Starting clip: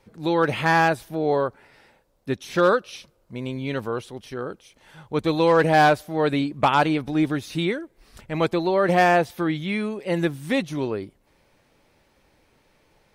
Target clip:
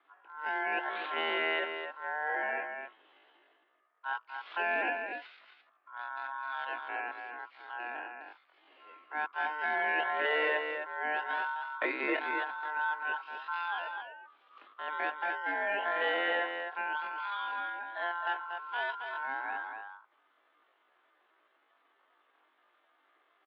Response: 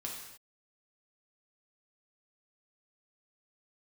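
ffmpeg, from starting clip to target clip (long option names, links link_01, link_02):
-filter_complex "[0:a]acompressor=threshold=-28dB:ratio=1.5,aeval=exprs='val(0)*sin(2*PI*1100*n/s)':channel_layout=same,highpass=frequency=170:width_type=q:width=0.5412,highpass=frequency=170:width_type=q:width=1.307,lowpass=frequency=3300:width_type=q:width=0.5176,lowpass=frequency=3300:width_type=q:width=0.7071,lowpass=frequency=3300:width_type=q:width=1.932,afreqshift=110,asplit=2[link_01][link_02];[link_02]adelay=139.9,volume=-6dB,highshelf=frequency=4000:gain=-3.15[link_03];[link_01][link_03]amix=inputs=2:normalize=0,atempo=0.56,volume=-6dB"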